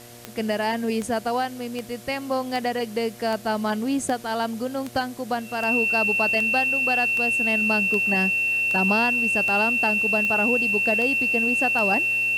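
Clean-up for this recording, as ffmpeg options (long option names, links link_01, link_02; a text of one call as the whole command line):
ffmpeg -i in.wav -af "adeclick=threshold=4,bandreject=frequency=119.3:width_type=h:width=4,bandreject=frequency=238.6:width_type=h:width=4,bandreject=frequency=357.9:width_type=h:width=4,bandreject=frequency=477.2:width_type=h:width=4,bandreject=frequency=596.5:width_type=h:width=4,bandreject=frequency=715.8:width_type=h:width=4,bandreject=frequency=2700:width=30,afwtdn=0.005" out.wav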